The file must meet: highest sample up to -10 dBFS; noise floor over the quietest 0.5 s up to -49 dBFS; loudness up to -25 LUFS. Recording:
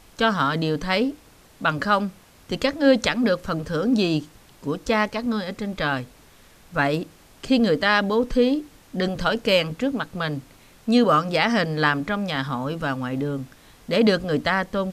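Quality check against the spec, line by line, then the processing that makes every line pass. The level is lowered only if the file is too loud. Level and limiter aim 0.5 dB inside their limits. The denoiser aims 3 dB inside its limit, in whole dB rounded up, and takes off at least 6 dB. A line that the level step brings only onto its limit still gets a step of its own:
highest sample -4.5 dBFS: fail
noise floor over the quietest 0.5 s -51 dBFS: OK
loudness -23.0 LUFS: fail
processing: gain -2.5 dB; limiter -10.5 dBFS

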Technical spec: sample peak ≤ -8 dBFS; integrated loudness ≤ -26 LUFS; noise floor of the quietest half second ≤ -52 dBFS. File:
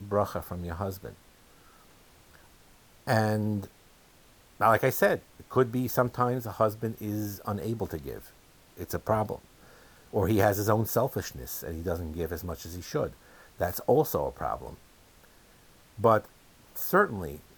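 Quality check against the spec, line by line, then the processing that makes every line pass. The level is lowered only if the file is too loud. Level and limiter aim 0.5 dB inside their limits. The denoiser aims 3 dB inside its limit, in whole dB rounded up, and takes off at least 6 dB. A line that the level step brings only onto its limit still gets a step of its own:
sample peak -9.0 dBFS: OK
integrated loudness -29.0 LUFS: OK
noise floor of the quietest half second -58 dBFS: OK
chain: none

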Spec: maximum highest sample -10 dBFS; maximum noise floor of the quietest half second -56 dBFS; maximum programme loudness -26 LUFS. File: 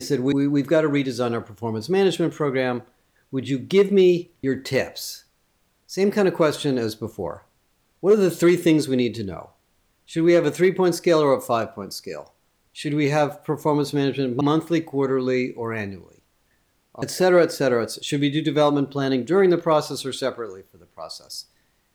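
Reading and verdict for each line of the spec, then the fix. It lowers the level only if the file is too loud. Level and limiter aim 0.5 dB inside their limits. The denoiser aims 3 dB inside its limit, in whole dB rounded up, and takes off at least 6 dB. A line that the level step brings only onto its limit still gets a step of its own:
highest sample -7.0 dBFS: fail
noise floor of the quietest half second -66 dBFS: OK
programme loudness -21.5 LUFS: fail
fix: gain -5 dB

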